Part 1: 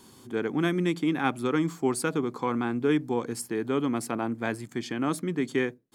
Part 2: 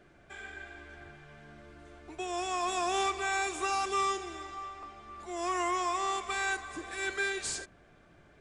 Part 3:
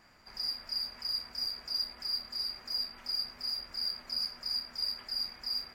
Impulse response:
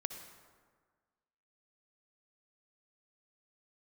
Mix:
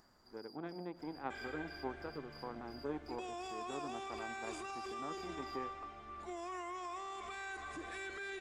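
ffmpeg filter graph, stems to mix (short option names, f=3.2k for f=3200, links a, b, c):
-filter_complex "[0:a]aemphasis=mode=reproduction:type=bsi,aeval=exprs='0.398*(cos(1*acos(clip(val(0)/0.398,-1,1)))-cos(1*PI/2))+0.0708*(cos(3*acos(clip(val(0)/0.398,-1,1)))-cos(3*PI/2))+0.01*(cos(7*acos(clip(val(0)/0.398,-1,1)))-cos(7*PI/2))':c=same,bandpass=f=690:t=q:w=1.2:csg=0,volume=-12dB,asplit=3[a][b][c];[b]volume=-9dB[d];[1:a]highshelf=f=5.6k:g=-8.5,alimiter=level_in=7dB:limit=-24dB:level=0:latency=1:release=84,volume=-7dB,adelay=1000,volume=-2dB[e];[2:a]equalizer=f=2.4k:t=o:w=0.73:g=-14,acompressor=threshold=-43dB:ratio=2,volume=-15.5dB[f];[c]apad=whole_len=253377[g];[f][g]sidechaincompress=threshold=-53dB:ratio=8:attack=31:release=110[h];[e][h]amix=inputs=2:normalize=0,acompressor=mode=upward:threshold=-59dB:ratio=2.5,alimiter=level_in=13.5dB:limit=-24dB:level=0:latency=1:release=10,volume=-13.5dB,volume=0dB[i];[3:a]atrim=start_sample=2205[j];[d][j]afir=irnorm=-1:irlink=0[k];[a][i][k]amix=inputs=3:normalize=0"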